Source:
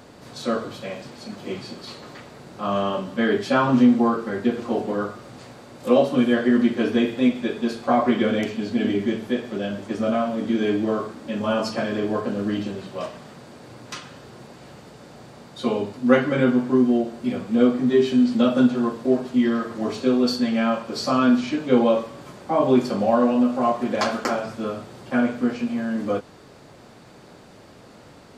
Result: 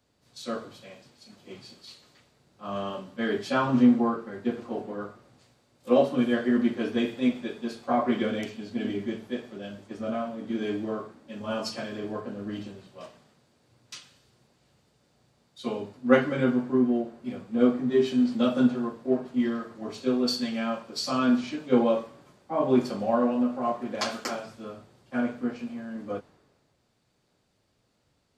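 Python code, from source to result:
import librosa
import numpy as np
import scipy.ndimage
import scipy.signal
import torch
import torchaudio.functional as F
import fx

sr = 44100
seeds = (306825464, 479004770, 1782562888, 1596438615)

y = fx.band_widen(x, sr, depth_pct=70)
y = y * librosa.db_to_amplitude(-7.0)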